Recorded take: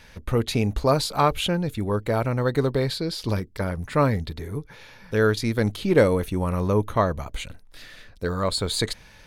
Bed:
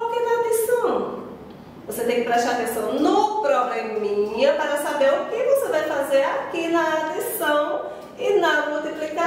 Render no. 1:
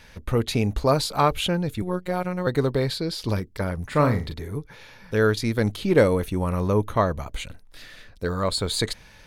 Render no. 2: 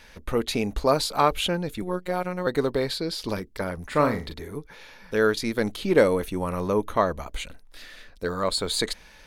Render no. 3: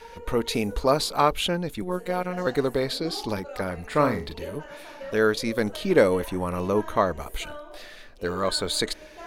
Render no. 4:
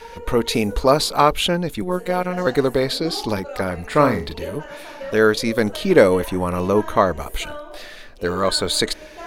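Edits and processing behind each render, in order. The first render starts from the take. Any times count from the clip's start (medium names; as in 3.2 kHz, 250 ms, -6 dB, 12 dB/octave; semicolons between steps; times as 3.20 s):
1.82–2.47 s: robot voice 181 Hz; 3.87–4.34 s: flutter echo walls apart 6.8 m, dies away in 0.28 s
peaking EQ 110 Hz -13 dB 0.97 oct
add bed -20.5 dB
trim +6 dB; peak limiter -1 dBFS, peak gain reduction 1 dB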